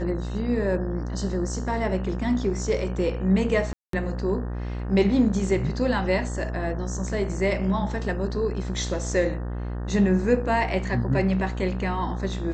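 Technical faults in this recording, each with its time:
buzz 60 Hz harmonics 31 -30 dBFS
3.73–3.93 s: dropout 203 ms

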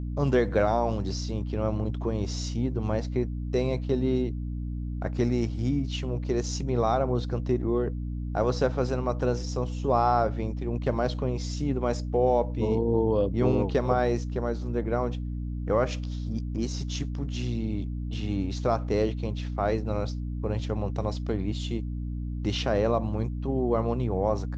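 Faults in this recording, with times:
hum 60 Hz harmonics 5 -32 dBFS

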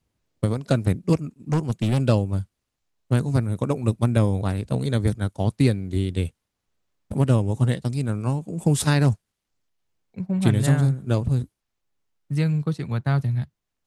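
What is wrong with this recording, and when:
1.52–2.00 s: clipped -17 dBFS

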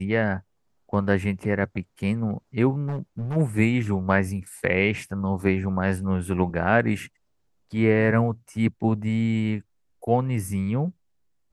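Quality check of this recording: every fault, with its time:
2.87–3.37 s: clipped -25 dBFS

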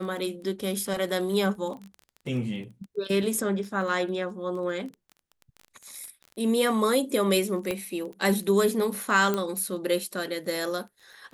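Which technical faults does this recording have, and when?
crackle 13 per s -35 dBFS
7.71 s: pop -15 dBFS
9.34 s: pop -13 dBFS

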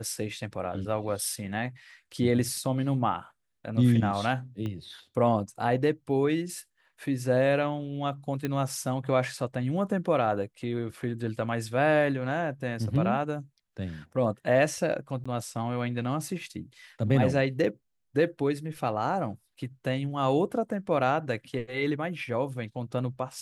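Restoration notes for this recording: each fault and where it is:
4.66 s: pop -24 dBFS
8.45 s: pop -17 dBFS
15.24–15.26 s: dropout 15 ms

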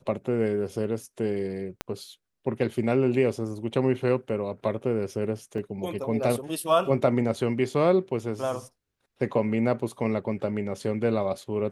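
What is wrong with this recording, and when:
1.81 s: pop -14 dBFS
5.58 s: dropout 2.2 ms

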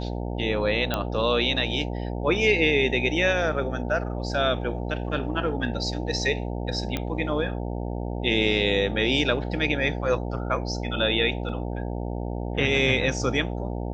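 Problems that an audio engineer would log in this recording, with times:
buzz 60 Hz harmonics 15 -30 dBFS
0.94 s: pop -10 dBFS
6.97 s: pop -13 dBFS
11.49 s: dropout 2.7 ms

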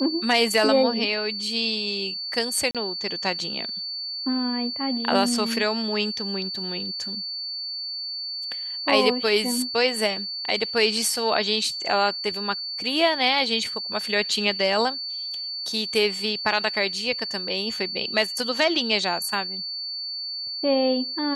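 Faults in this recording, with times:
whine 4.5 kHz -29 dBFS
2.71–2.75 s: dropout 37 ms

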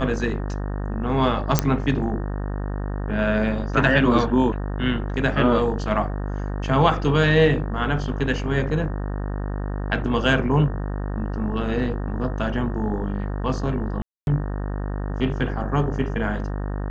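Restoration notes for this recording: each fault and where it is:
buzz 50 Hz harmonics 37 -27 dBFS
1.59 s: pop -2 dBFS
14.02–14.27 s: dropout 251 ms

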